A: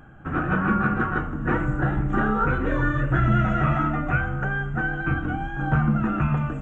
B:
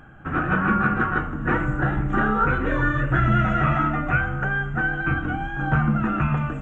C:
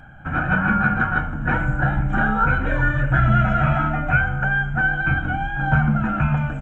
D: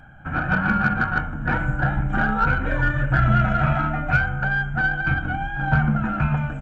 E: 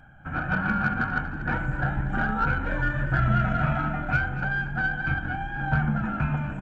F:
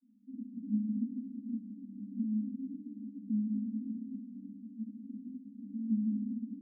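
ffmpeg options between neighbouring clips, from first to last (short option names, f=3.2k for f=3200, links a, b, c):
-af "equalizer=f=2.2k:w=0.57:g=4"
-af "aecho=1:1:1.3:0.67"
-af "aeval=exprs='0.631*(cos(1*acos(clip(val(0)/0.631,-1,1)))-cos(1*PI/2))+0.0158*(cos(7*acos(clip(val(0)/0.631,-1,1)))-cos(7*PI/2))':c=same,volume=-1dB"
-filter_complex "[0:a]asplit=7[a][b][c][d][e][f][g];[b]adelay=238,afreqshift=45,volume=-13.5dB[h];[c]adelay=476,afreqshift=90,volume=-18.7dB[i];[d]adelay=714,afreqshift=135,volume=-23.9dB[j];[e]adelay=952,afreqshift=180,volume=-29.1dB[k];[f]adelay=1190,afreqshift=225,volume=-34.3dB[l];[g]adelay=1428,afreqshift=270,volume=-39.5dB[m];[a][h][i][j][k][l][m]amix=inputs=7:normalize=0,volume=-5dB"
-af "asuperpass=centerf=240:order=20:qfactor=2.8"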